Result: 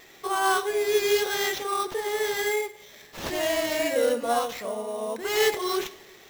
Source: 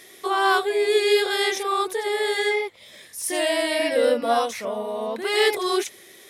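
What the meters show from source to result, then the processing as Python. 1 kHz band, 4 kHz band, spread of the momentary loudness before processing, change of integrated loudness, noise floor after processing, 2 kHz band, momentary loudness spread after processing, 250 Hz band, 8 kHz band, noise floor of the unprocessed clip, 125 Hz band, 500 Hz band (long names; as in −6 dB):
−3.5 dB, −5.0 dB, 9 LU, −3.5 dB, −51 dBFS, −4.0 dB, 9 LU, −4.0 dB, −0.5 dB, −48 dBFS, can't be measured, −3.5 dB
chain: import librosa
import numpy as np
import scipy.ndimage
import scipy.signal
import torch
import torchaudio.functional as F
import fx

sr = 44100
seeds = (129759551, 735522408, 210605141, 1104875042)

y = fx.wow_flutter(x, sr, seeds[0], rate_hz=2.1, depth_cents=18.0)
y = fx.rev_double_slope(y, sr, seeds[1], early_s=0.62, late_s=2.6, knee_db=-18, drr_db=11.5)
y = fx.sample_hold(y, sr, seeds[2], rate_hz=9500.0, jitter_pct=0)
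y = F.gain(torch.from_numpy(y), -4.0).numpy()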